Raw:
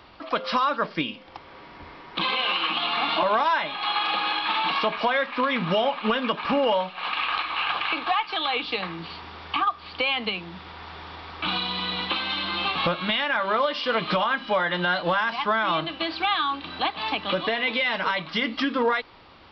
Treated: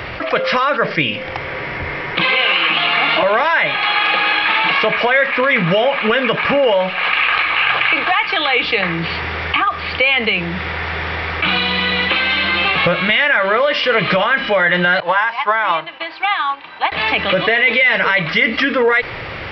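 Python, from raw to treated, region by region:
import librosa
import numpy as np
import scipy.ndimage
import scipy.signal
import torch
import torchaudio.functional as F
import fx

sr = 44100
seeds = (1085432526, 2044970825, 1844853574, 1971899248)

y = fx.chain(x, sr, fx.highpass(hz=500.0, slope=6),
    fx.peak_eq(hz=940.0, db=13.5, octaves=0.49),
    fx.upward_expand(threshold_db=-35.0, expansion=2.5), at=(15.0, 16.92))
y = fx.graphic_eq_10(y, sr, hz=(125, 250, 500, 1000, 2000, 4000), db=(9, -7, 6, -7, 11, -7))
y = fx.env_flatten(y, sr, amount_pct=50)
y = y * librosa.db_to_amplitude(4.5)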